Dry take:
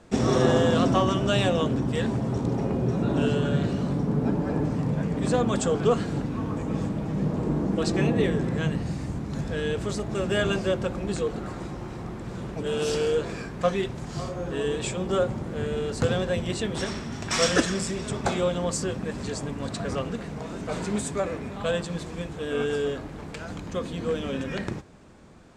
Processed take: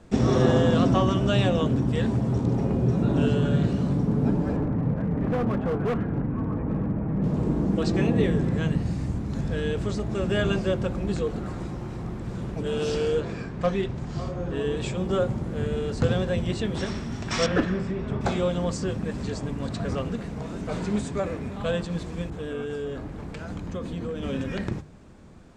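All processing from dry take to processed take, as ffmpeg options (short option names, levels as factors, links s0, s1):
-filter_complex "[0:a]asettb=1/sr,asplit=3[s0][s1][s2];[s0]atrim=end=4.564[s3];[s1]atrim=start=4.56:end=7.24,asetpts=PTS-STARTPTS,afade=t=in:d=0.004:c=qsin,afade=t=out:st=2.676:d=0.004:c=qsin,lowpass=f=2000:w=0.5412,lowpass=f=2000:w=1.3066,asoftclip=type=hard:threshold=0.075[s4];[s2]atrim=start=7.236[s5];[s3][s4]acrossfade=d=0.004:c1=hsin:c2=qsin[s6];[s6][s5]acrossfade=d=0.004:c1=qsin:c2=hsin,asettb=1/sr,asplit=3[s7][s8][s9];[s7]atrim=end=13.204[s10];[s8]atrim=start=13.2:end=14.77,asetpts=PTS-STARTPTS,afade=t=in:d=0.004:c=qsin,afade=t=out:st=1.566:d=0.004:c=qsin,adynamicsmooth=sensitivity=2:basefreq=7000,asoftclip=type=hard:threshold=0.178[s11];[s9]atrim=start=14.766[s12];[s10][s11]acrossfade=d=0.004:c1=hsin:c2=qsin[s13];[s13][s12]acrossfade=d=0.004:c1=qsin:c2=hsin,asettb=1/sr,asplit=3[s14][s15][s16];[s14]atrim=end=17.464[s17];[s15]atrim=start=17.46:end=18.21,asetpts=PTS-STARTPTS,afade=t=in:d=0.004:c=qsin,afade=t=out:st=0.746:d=0.004:c=qsin,lowpass=2100,volume=5.31,asoftclip=hard,volume=0.188,asplit=2[s18][s19];[s19]adelay=38,volume=0.251[s20];[s18][s20]amix=inputs=2:normalize=0,atrim=end_sample=33075[s21];[s16]atrim=start=18.206[s22];[s17][s21]acrossfade=d=0.004:c1=hsin:c2=qsin[s23];[s23][s22]acrossfade=d=0.004:c1=qsin:c2=hsin,asettb=1/sr,asplit=3[s24][s25][s26];[s24]atrim=end=22.304[s27];[s25]atrim=start=22.3:end=24.23,asetpts=PTS-STARTPTS,afade=t=in:d=0.004:c=qsin,afade=t=out:st=1.926:d=0.004:c=qsin,acompressor=threshold=0.0355:ratio=3:attack=3.2:release=140:knee=1:detection=peak,adynamicequalizer=threshold=0.00355:dfrequency=2300:dqfactor=0.7:tfrequency=2300:tqfactor=0.7:attack=5:release=100:ratio=0.375:range=2:mode=cutabove:tftype=highshelf[s28];[s26]atrim=start=24.226[s29];[s27][s28]acrossfade=d=0.004:c1=hsin:c2=qsin[s30];[s30][s29]acrossfade=d=0.004:c1=qsin:c2=hsin,bandreject=f=50:t=h:w=6,bandreject=f=100:t=h:w=6,bandreject=f=150:t=h:w=6,acrossover=split=6800[s31][s32];[s32]acompressor=threshold=0.00178:ratio=4:attack=1:release=60[s33];[s31][s33]amix=inputs=2:normalize=0,lowshelf=f=210:g=8.5,volume=0.794"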